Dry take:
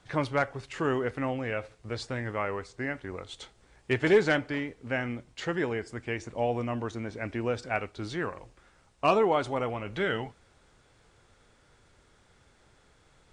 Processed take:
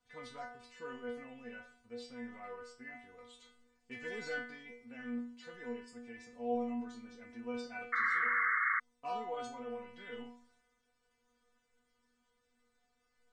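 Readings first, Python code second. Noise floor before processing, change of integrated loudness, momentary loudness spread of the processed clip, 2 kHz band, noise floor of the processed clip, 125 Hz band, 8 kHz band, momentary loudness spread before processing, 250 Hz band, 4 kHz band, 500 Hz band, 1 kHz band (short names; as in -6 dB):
-63 dBFS, -8.0 dB, 20 LU, -3.0 dB, -79 dBFS, -27.5 dB, under -10 dB, 14 LU, -11.0 dB, -14.0 dB, -15.0 dB, -7.5 dB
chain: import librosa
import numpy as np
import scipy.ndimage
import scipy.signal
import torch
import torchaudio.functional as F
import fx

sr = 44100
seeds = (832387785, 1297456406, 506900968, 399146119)

y = fx.transient(x, sr, attack_db=0, sustain_db=7)
y = fx.stiff_resonator(y, sr, f0_hz=240.0, decay_s=0.51, stiffness=0.002)
y = fx.spec_paint(y, sr, seeds[0], shape='noise', start_s=7.92, length_s=0.88, low_hz=1100.0, high_hz=2200.0, level_db=-32.0)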